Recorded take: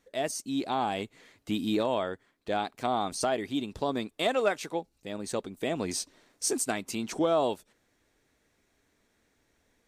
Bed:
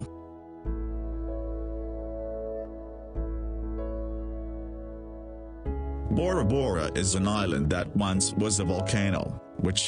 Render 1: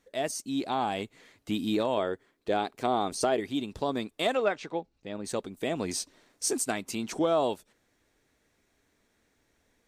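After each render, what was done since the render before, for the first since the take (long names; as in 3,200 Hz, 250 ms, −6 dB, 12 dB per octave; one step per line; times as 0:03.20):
0:01.97–0:03.40: parametric band 400 Hz +6.5 dB
0:04.37–0:05.25: high-frequency loss of the air 130 metres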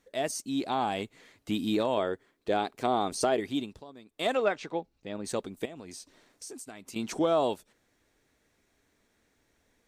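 0:03.58–0:04.31: duck −18.5 dB, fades 0.26 s
0:05.65–0:06.96: downward compressor 4 to 1, threshold −43 dBFS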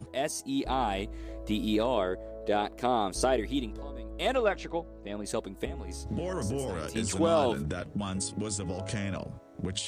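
mix in bed −7.5 dB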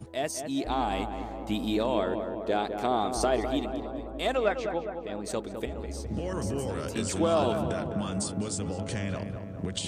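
feedback echo with a low-pass in the loop 206 ms, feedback 70%, low-pass 1,700 Hz, level −7 dB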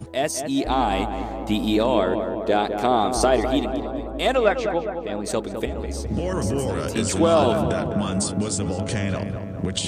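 level +7.5 dB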